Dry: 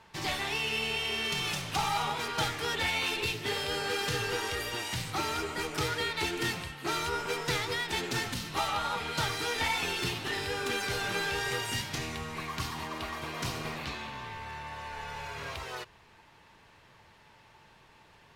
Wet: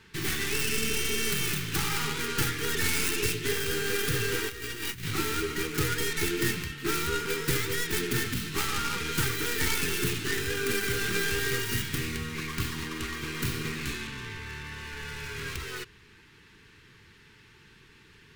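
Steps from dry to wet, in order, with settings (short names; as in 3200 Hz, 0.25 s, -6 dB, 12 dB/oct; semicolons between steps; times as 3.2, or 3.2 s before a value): tracing distortion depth 0.31 ms; EQ curve 430 Hz 0 dB, 620 Hz -25 dB, 1500 Hz -1 dB; 4.49–5.15 negative-ratio compressor -40 dBFS, ratio -0.5; gain +5.5 dB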